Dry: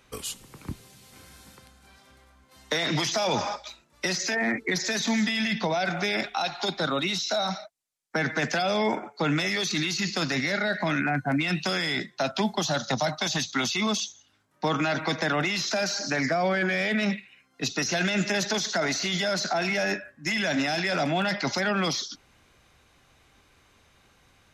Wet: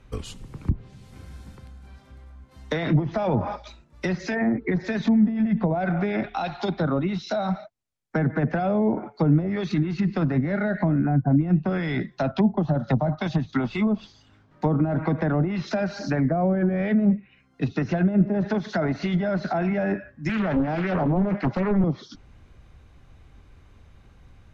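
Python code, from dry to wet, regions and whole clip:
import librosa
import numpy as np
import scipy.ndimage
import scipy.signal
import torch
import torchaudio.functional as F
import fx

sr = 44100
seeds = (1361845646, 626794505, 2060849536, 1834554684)

y = fx.chain(x, sr, fx.law_mismatch(coded='mu'),
    fx.low_shelf(hz=150.0, db=-6.5),
    fx.resample_linear(factor=4), at=(13.6, 14.66))
y = fx.chain(y, sr, fx.highpass(hz=120.0, slope=24),
    fx.peak_eq(hz=7700.0, db=5.0, octaves=0.34),
    fx.doppler_dist(depth_ms=0.59), at=(20.29, 21.84))
y = fx.riaa(y, sr, side='playback')
y = fx.env_lowpass_down(y, sr, base_hz=630.0, full_db=-17.0)
y = fx.high_shelf(y, sr, hz=9400.0, db=9.5)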